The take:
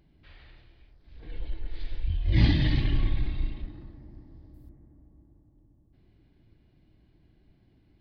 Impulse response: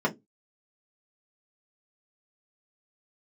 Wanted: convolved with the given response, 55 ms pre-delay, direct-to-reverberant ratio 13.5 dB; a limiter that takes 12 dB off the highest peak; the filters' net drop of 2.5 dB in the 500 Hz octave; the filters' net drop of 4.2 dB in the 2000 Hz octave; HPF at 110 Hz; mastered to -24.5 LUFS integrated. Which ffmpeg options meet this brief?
-filter_complex "[0:a]highpass=110,equalizer=f=500:t=o:g=-4,equalizer=f=2k:t=o:g=-4.5,alimiter=level_in=1.5dB:limit=-24dB:level=0:latency=1,volume=-1.5dB,asplit=2[a][b];[1:a]atrim=start_sample=2205,adelay=55[c];[b][c]afir=irnorm=-1:irlink=0,volume=-25dB[d];[a][d]amix=inputs=2:normalize=0,volume=14dB"

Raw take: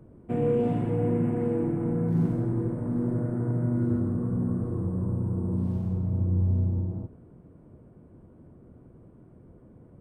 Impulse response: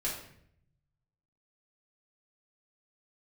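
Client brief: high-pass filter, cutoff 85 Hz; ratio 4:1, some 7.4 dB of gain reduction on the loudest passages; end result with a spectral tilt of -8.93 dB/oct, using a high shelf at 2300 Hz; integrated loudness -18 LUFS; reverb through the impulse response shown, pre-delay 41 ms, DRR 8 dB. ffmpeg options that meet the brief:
-filter_complex "[0:a]highpass=85,highshelf=f=2.3k:g=8,acompressor=threshold=-30dB:ratio=4,asplit=2[a][b];[1:a]atrim=start_sample=2205,adelay=41[c];[b][c]afir=irnorm=-1:irlink=0,volume=-12.5dB[d];[a][d]amix=inputs=2:normalize=0,volume=14.5dB"

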